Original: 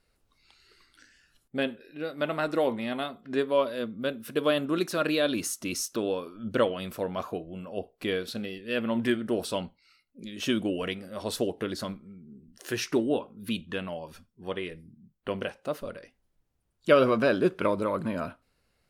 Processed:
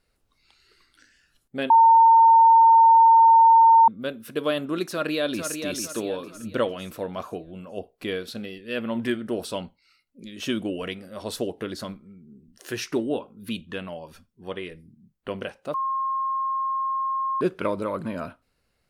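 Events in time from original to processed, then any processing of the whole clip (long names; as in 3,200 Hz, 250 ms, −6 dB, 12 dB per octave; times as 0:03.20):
0:01.70–0:03.88: beep over 909 Hz −10.5 dBFS
0:04.88–0:05.57: delay throw 450 ms, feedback 40%, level −6.5 dB
0:15.74–0:17.41: beep over 1,070 Hz −23 dBFS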